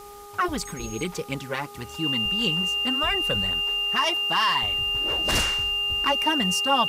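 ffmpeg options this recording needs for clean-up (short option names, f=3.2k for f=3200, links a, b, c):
-af "bandreject=f=408.7:t=h:w=4,bandreject=f=817.4:t=h:w=4,bandreject=f=1.2261k:t=h:w=4,bandreject=f=2.8k:w=30,afwtdn=0.0032"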